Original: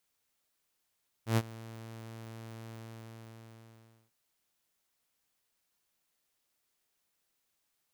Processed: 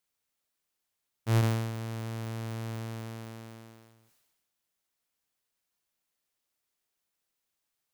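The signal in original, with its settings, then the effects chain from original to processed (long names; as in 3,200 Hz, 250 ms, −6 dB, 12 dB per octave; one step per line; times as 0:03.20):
note with an ADSR envelope saw 113 Hz, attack 111 ms, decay 46 ms, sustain −21 dB, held 1.45 s, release 1,400 ms −20.5 dBFS
dynamic equaliser 120 Hz, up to +4 dB, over −51 dBFS, Q 3.6
leveller curve on the samples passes 2
level that may fall only so fast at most 40 dB per second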